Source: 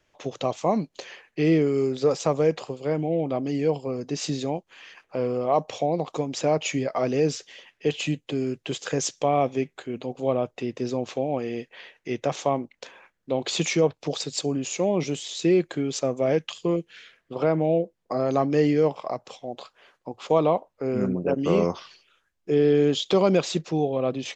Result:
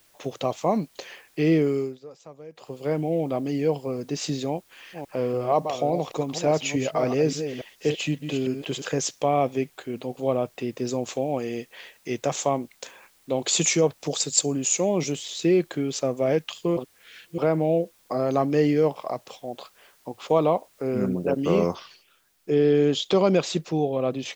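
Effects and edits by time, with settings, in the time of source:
1.71–2.82 dip -21.5 dB, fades 0.28 s
4.48–8.97 reverse delay 0.285 s, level -8 dB
10.87–15.12 synth low-pass 7600 Hz, resonance Q 4.5
16.77–17.38 reverse
21.75 noise floor step -61 dB -68 dB

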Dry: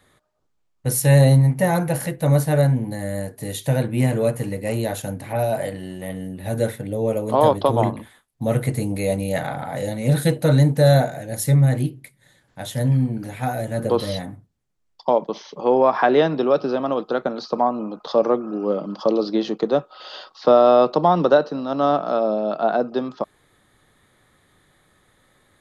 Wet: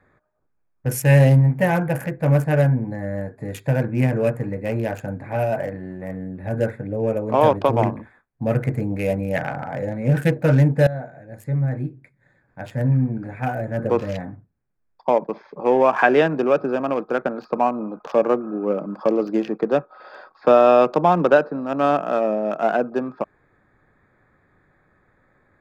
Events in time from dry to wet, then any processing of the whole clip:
10.87–12.7 fade in linear, from -16 dB
whole clip: Wiener smoothing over 15 samples; thirty-one-band EQ 1600 Hz +7 dB, 2500 Hz +11 dB, 4000 Hz -9 dB, 10000 Hz -9 dB

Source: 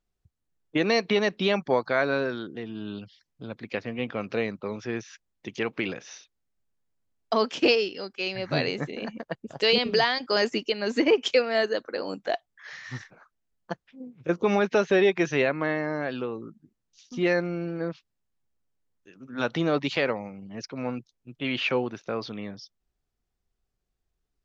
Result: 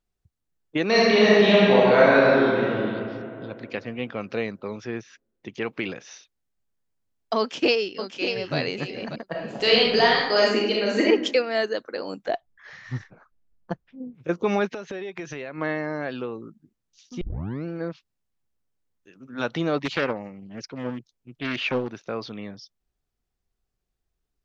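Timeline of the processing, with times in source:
0.86–2.77 reverb throw, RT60 2.7 s, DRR -7.5 dB
4.89–5.63 high shelf 4000 Hz -8 dB
7.39–8.56 echo throw 0.59 s, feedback 15%, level -8 dB
9.28–11.03 reverb throw, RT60 0.87 s, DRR -3 dB
12.28–14.15 tilt -2.5 dB/oct
14.67–15.58 compressor 10:1, threshold -30 dBFS
17.21 tape start 0.44 s
19.85–21.89 Doppler distortion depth 0.49 ms

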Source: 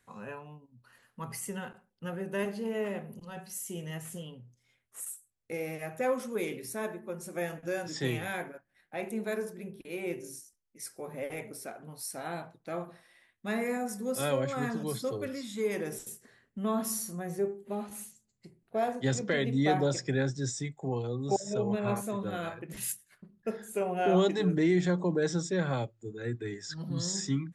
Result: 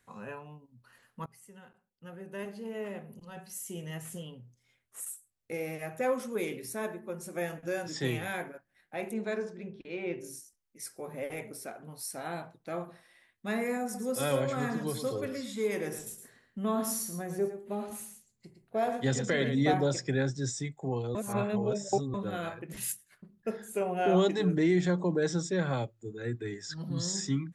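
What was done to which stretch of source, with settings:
1.26–4.16 fade in, from -21.5 dB
9.13–10.2 LPF 7800 Hz -> 4200 Hz 24 dB/oct
13.83–19.74 echo 0.112 s -8.5 dB
21.15–22.14 reverse

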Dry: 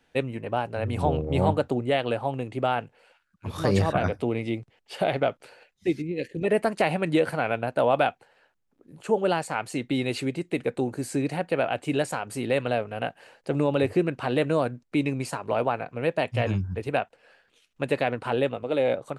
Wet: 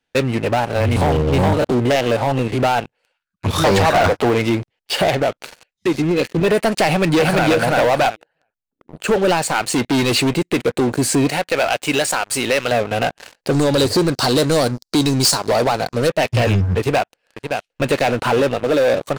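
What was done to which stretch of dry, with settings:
0.6–2.63 stepped spectrum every 50 ms
3.64–4.42 bell 910 Hz +12 dB 2.1 oct
5.1–6.11 compressor 2:1, threshold -27 dBFS
6.85–7.48 echo throw 0.34 s, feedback 15%, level -1 dB
8.08–9.08 formant sharpening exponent 1.5
9.66–10.36 overloaded stage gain 29 dB
11.31–12.72 low shelf 470 Hz -11 dB
13.51–16.09 resonant high shelf 3500 Hz +10.5 dB, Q 3
16.79–17.89 echo throw 0.57 s, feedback 40%, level -12 dB
whole clip: bell 4600 Hz +5.5 dB 2.3 oct; compressor 1.5:1, threshold -28 dBFS; sample leveller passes 5; gain -2.5 dB

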